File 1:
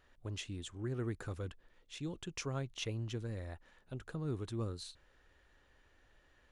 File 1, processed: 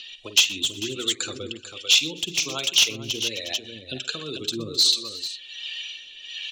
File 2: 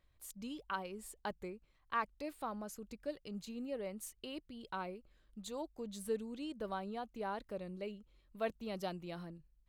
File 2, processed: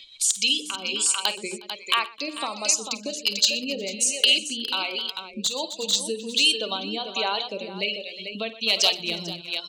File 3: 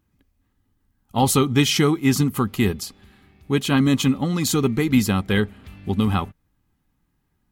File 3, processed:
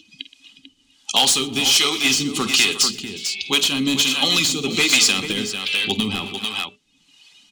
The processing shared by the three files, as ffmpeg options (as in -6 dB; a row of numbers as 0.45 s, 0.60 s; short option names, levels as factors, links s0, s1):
-filter_complex "[0:a]bandreject=f=60:t=h:w=6,bandreject=f=120:t=h:w=6,bandreject=f=180:t=h:w=6,bandreject=f=240:t=h:w=6,bandreject=f=300:t=h:w=6,bandreject=f=360:t=h:w=6,bandreject=f=420:t=h:w=6,bandreject=f=480:t=h:w=6,bandreject=f=540:t=h:w=6,bandreject=f=600:t=h:w=6,crystalizer=i=5.5:c=0,lowpass=f=7500:w=0.5412,lowpass=f=7500:w=1.3066,equalizer=f=3500:t=o:w=0.63:g=-2,acompressor=mode=upward:threshold=0.0708:ratio=2.5,aexciter=amount=13:drive=4.7:freq=2600,acrossover=split=200 3100:gain=0.158 1 0.1[s0][s1][s2];[s0][s1][s2]amix=inputs=3:normalize=0,afftdn=nr=21:nf=-34,acompressor=threshold=0.158:ratio=5,asoftclip=type=hard:threshold=0.178,asplit=2[s3][s4];[s4]aecho=0:1:46|53|122|261|361|444:0.133|0.15|0.119|0.112|0.119|0.422[s5];[s3][s5]amix=inputs=2:normalize=0,acrossover=split=430[s6][s7];[s6]aeval=exprs='val(0)*(1-0.7/2+0.7/2*cos(2*PI*1.3*n/s))':c=same[s8];[s7]aeval=exprs='val(0)*(1-0.7/2-0.7/2*cos(2*PI*1.3*n/s))':c=same[s9];[s8][s9]amix=inputs=2:normalize=0,volume=2"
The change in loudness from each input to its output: +19.5 LU, +20.0 LU, +3.0 LU